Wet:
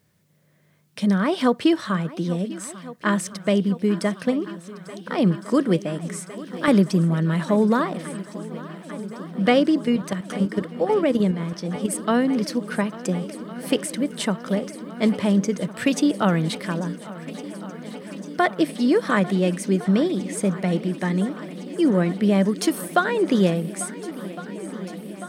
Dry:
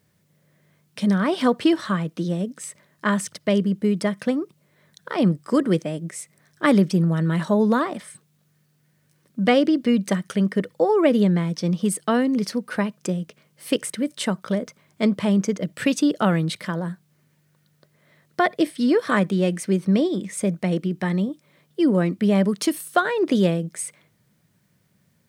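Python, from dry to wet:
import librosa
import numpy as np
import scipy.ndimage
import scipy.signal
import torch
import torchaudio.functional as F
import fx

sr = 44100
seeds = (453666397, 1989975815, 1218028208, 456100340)

y = fx.level_steps(x, sr, step_db=9, at=(9.85, 11.93))
y = fx.echo_swing(y, sr, ms=1409, ratio=1.5, feedback_pct=80, wet_db=-18.0)
y = fx.band_squash(y, sr, depth_pct=40, at=(6.09, 6.68))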